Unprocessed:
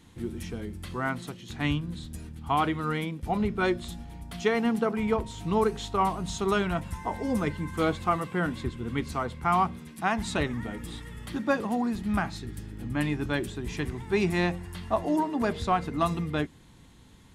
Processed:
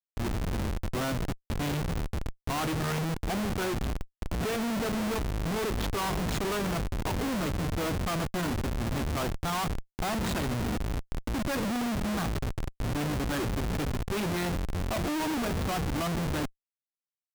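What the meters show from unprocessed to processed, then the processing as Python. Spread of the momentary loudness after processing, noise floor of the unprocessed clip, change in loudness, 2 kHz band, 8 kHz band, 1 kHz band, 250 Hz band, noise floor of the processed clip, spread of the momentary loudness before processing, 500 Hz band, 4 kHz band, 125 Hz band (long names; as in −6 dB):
5 LU, −53 dBFS, −2.0 dB, −2.5 dB, +5.0 dB, −5.0 dB, −2.0 dB, below −85 dBFS, 11 LU, −4.0 dB, +2.0 dB, +1.5 dB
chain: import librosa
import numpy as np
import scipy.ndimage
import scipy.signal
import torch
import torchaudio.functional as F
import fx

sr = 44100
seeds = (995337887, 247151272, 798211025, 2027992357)

y = fx.cvsd(x, sr, bps=64000)
y = fx.schmitt(y, sr, flips_db=-34.0)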